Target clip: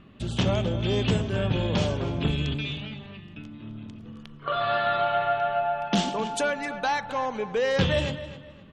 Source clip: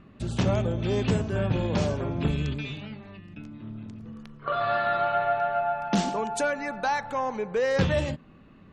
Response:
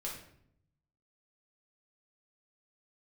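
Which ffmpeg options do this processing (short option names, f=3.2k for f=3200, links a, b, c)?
-filter_complex "[0:a]equalizer=f=3.2k:w=2.6:g=9,asplit=2[a][b];[b]adelay=259,lowpass=f=4.9k:p=1,volume=-13dB,asplit=2[c][d];[d]adelay=259,lowpass=f=4.9k:p=1,volume=0.31,asplit=2[e][f];[f]adelay=259,lowpass=f=4.9k:p=1,volume=0.31[g];[a][c][e][g]amix=inputs=4:normalize=0"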